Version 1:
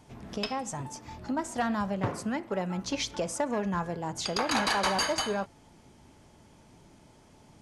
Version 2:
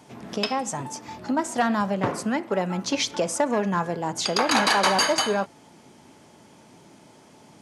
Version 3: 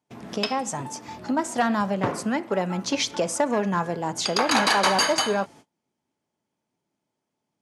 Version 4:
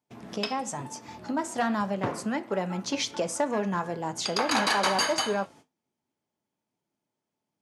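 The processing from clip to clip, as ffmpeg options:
ffmpeg -i in.wav -af "highpass=170,volume=7dB" out.wav
ffmpeg -i in.wav -af "agate=range=-30dB:threshold=-45dB:ratio=16:detection=peak" out.wav
ffmpeg -i in.wav -af "flanger=delay=8.2:depth=2.2:regen=-75:speed=1:shape=sinusoidal" out.wav

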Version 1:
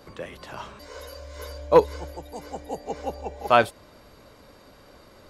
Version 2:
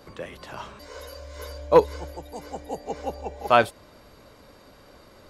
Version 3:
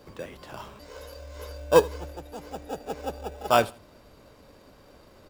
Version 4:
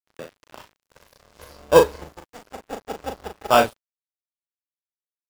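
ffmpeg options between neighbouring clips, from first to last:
ffmpeg -i in.wav -af anull out.wav
ffmpeg -i in.wav -filter_complex "[0:a]asplit=2[link_01][link_02];[link_02]acrusher=samples=21:mix=1:aa=0.000001,volume=-5dB[link_03];[link_01][link_03]amix=inputs=2:normalize=0,aecho=1:1:81|162:0.0841|0.0227,volume=-5dB" out.wav
ffmpeg -i in.wav -filter_complex "[0:a]aeval=exprs='sgn(val(0))*max(abs(val(0))-0.0133,0)':channel_layout=same,asplit=2[link_01][link_02];[link_02]adelay=38,volume=-6dB[link_03];[link_01][link_03]amix=inputs=2:normalize=0,volume=4.5dB" out.wav

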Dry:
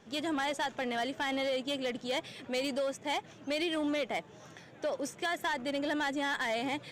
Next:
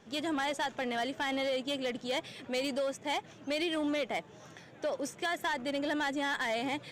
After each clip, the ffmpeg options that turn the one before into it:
ffmpeg -i in.wav -af anull out.wav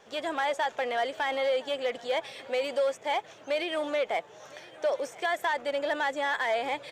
ffmpeg -i in.wav -filter_complex "[0:a]lowshelf=frequency=360:width_type=q:width=1.5:gain=-11,aecho=1:1:1012:0.075,acrossover=split=3000[link_01][link_02];[link_02]acompressor=threshold=-48dB:ratio=4:attack=1:release=60[link_03];[link_01][link_03]amix=inputs=2:normalize=0,volume=4dB" out.wav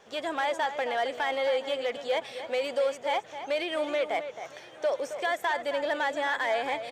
ffmpeg -i in.wav -filter_complex "[0:a]asplit=2[link_01][link_02];[link_02]adelay=268.2,volume=-10dB,highshelf=frequency=4000:gain=-6.04[link_03];[link_01][link_03]amix=inputs=2:normalize=0" out.wav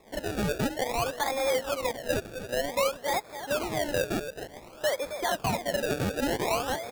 ffmpeg -i in.wav -af "acrusher=samples=29:mix=1:aa=0.000001:lfo=1:lforange=29:lforate=0.54" out.wav

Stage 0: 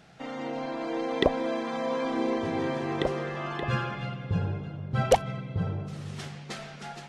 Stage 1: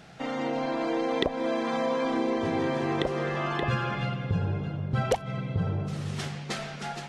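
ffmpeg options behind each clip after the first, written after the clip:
ffmpeg -i in.wav -af "acompressor=threshold=-29dB:ratio=4,volume=5dB" out.wav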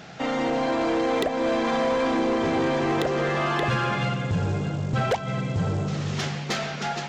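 ffmpeg -i in.wav -af "aresample=16000,acrusher=bits=6:mode=log:mix=0:aa=0.000001,aresample=44100,lowshelf=frequency=76:gain=-10,asoftclip=type=tanh:threshold=-26.5dB,volume=8dB" out.wav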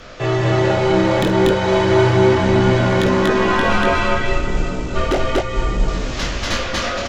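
ffmpeg -i in.wav -filter_complex "[0:a]flanger=delay=18.5:depth=6.3:speed=0.34,afreqshift=-140,asplit=2[link_01][link_02];[link_02]aecho=0:1:49.56|239.1:0.316|1[link_03];[link_01][link_03]amix=inputs=2:normalize=0,volume=8.5dB" out.wav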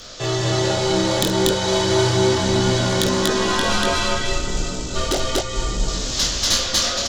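ffmpeg -i in.wav -af "aexciter=amount=4.9:drive=6.4:freq=3400,volume=-4.5dB" out.wav

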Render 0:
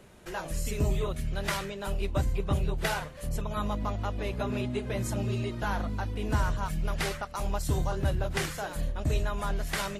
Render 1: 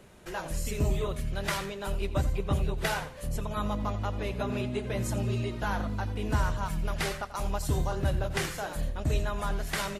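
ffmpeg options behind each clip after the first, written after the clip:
ffmpeg -i in.wav -af "aecho=1:1:87|174|261:0.178|0.0533|0.016" out.wav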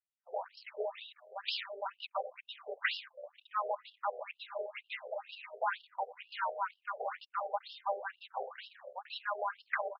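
ffmpeg -i in.wav -af "anlmdn=1.58,afftfilt=real='re*between(b*sr/1024,550*pow(3900/550,0.5+0.5*sin(2*PI*2.1*pts/sr))/1.41,550*pow(3900/550,0.5+0.5*sin(2*PI*2.1*pts/sr))*1.41)':imag='im*between(b*sr/1024,550*pow(3900/550,0.5+0.5*sin(2*PI*2.1*pts/sr))/1.41,550*pow(3900/550,0.5+0.5*sin(2*PI*2.1*pts/sr))*1.41)':win_size=1024:overlap=0.75,volume=3dB" out.wav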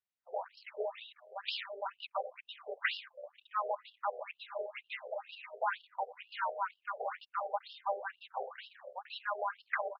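ffmpeg -i in.wav -af "lowpass=4300" out.wav

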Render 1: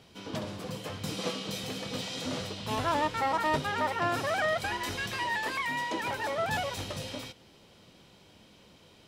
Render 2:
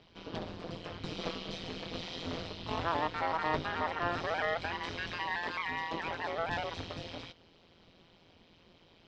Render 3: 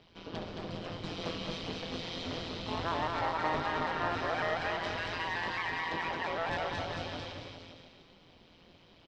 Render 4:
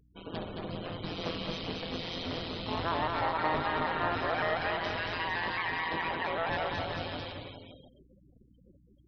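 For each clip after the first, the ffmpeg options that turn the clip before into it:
ffmpeg -i in.wav -af "lowpass=frequency=4900:width=0.5412,lowpass=frequency=4900:width=1.3066,tremolo=f=170:d=0.974" out.wav
ffmpeg -i in.wav -filter_complex "[0:a]asoftclip=type=tanh:threshold=-23.5dB,asplit=2[link_01][link_02];[link_02]aecho=0:1:220|407|566|701.1|815.9:0.631|0.398|0.251|0.158|0.1[link_03];[link_01][link_03]amix=inputs=2:normalize=0" out.wav
ffmpeg -i in.wav -af "afftfilt=real='re*gte(hypot(re,im),0.00447)':imag='im*gte(hypot(re,im),0.00447)':win_size=1024:overlap=0.75,aeval=exprs='val(0)+0.000562*(sin(2*PI*60*n/s)+sin(2*PI*2*60*n/s)/2+sin(2*PI*3*60*n/s)/3+sin(2*PI*4*60*n/s)/4+sin(2*PI*5*60*n/s)/5)':channel_layout=same,volume=2dB" out.wav

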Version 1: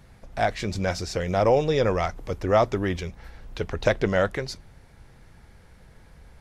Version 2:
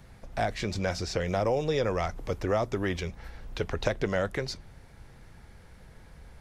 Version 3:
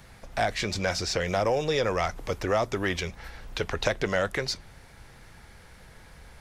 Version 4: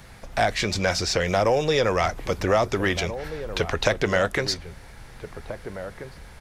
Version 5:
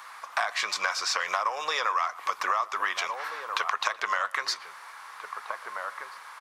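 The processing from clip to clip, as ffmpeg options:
ffmpeg -i in.wav -filter_complex "[0:a]acrossover=split=420|6600[link_01][link_02][link_03];[link_01]acompressor=threshold=-30dB:ratio=4[link_04];[link_02]acompressor=threshold=-28dB:ratio=4[link_05];[link_03]acompressor=threshold=-51dB:ratio=4[link_06];[link_04][link_05][link_06]amix=inputs=3:normalize=0" out.wav
ffmpeg -i in.wav -filter_complex "[0:a]tiltshelf=frequency=660:gain=-4,asplit=2[link_01][link_02];[link_02]asoftclip=type=tanh:threshold=-24dB,volume=-7dB[link_03];[link_01][link_03]amix=inputs=2:normalize=0" out.wav
ffmpeg -i in.wav -filter_complex "[0:a]asplit=2[link_01][link_02];[link_02]adelay=1633,volume=-11dB,highshelf=frequency=4000:gain=-36.7[link_03];[link_01][link_03]amix=inputs=2:normalize=0,volume=4.5dB" out.wav
ffmpeg -i in.wav -filter_complex "[0:a]highpass=frequency=1100:width_type=q:width=6.8,acompressor=threshold=-24dB:ratio=6,asplit=2[link_01][link_02];[link_02]adelay=120,highpass=300,lowpass=3400,asoftclip=type=hard:threshold=-17.5dB,volume=-20dB[link_03];[link_01][link_03]amix=inputs=2:normalize=0" out.wav

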